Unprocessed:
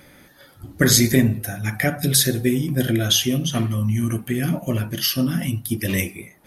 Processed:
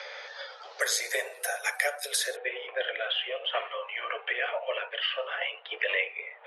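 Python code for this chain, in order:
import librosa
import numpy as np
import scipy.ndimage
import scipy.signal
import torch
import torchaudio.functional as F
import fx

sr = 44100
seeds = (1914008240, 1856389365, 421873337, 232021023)

y = scipy.signal.sosfilt(scipy.signal.butter(16, 450.0, 'highpass', fs=sr, output='sos'), x)
y = fx.rider(y, sr, range_db=4, speed_s=0.5)
y = fx.steep_lowpass(y, sr, hz=fx.steps((0.0, 5600.0), (0.8, 11000.0), (2.35, 3100.0)), slope=48)
y = fx.band_squash(y, sr, depth_pct=70)
y = y * librosa.db_to_amplitude(-2.5)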